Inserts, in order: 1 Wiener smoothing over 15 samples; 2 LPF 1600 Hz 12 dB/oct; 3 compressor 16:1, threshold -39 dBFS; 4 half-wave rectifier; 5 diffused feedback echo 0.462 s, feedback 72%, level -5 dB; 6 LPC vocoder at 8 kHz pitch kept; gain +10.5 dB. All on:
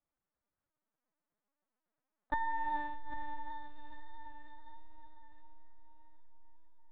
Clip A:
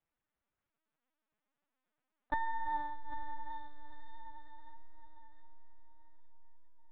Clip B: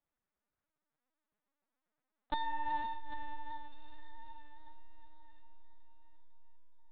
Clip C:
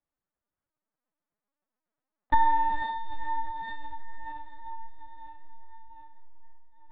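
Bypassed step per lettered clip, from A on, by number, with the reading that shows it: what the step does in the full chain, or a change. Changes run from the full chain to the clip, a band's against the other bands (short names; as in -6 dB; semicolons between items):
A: 1, 250 Hz band -2.0 dB; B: 2, 2 kHz band -2.0 dB; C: 3, mean gain reduction 3.5 dB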